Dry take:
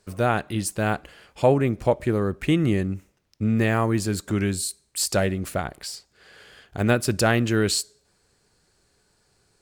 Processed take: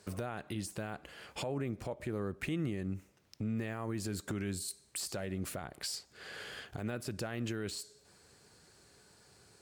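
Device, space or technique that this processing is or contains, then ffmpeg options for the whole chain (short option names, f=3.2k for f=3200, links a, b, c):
podcast mastering chain: -af "highpass=74,deesser=0.55,acompressor=threshold=-43dB:ratio=2,alimiter=level_in=7dB:limit=-24dB:level=0:latency=1:release=100,volume=-7dB,volume=4dB" -ar 44100 -c:a libmp3lame -b:a 112k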